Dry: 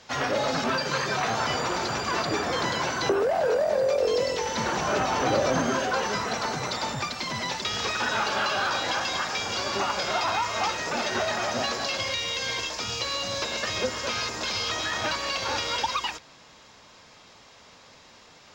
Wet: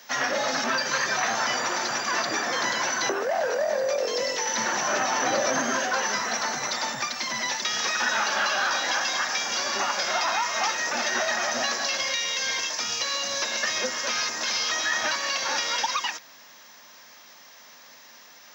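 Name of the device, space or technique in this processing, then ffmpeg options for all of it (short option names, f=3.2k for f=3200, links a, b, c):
old television with a line whistle: -af "highpass=f=170:w=0.5412,highpass=f=170:w=1.3066,equalizer=f=170:t=q:w=4:g=-10,equalizer=f=300:t=q:w=4:g=-4,equalizer=f=430:t=q:w=4:g=-8,equalizer=f=1.8k:t=q:w=4:g=7,equalizer=f=5.9k:t=q:w=4:g=10,equalizer=f=8.4k:t=q:w=4:g=-5,lowpass=f=8.9k:w=0.5412,lowpass=f=8.9k:w=1.3066,aeval=exprs='val(0)+0.00178*sin(2*PI*15625*n/s)':c=same"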